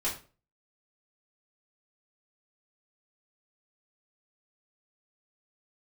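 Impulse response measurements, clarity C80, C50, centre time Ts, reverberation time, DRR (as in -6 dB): 13.5 dB, 8.5 dB, 26 ms, 0.35 s, -8.5 dB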